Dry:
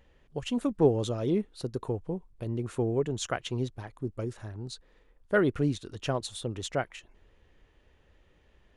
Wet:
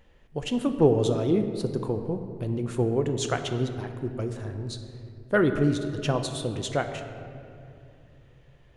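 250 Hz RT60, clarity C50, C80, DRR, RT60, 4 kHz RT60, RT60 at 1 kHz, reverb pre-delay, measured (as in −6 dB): 3.6 s, 8.0 dB, 9.0 dB, 6.5 dB, 2.6 s, 1.4 s, 2.3 s, 6 ms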